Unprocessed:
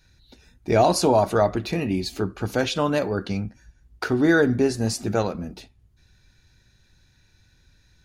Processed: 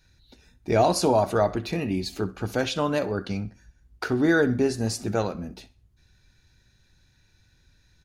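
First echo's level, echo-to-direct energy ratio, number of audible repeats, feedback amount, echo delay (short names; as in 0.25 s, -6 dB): -19.5 dB, -19.0 dB, 2, 34%, 64 ms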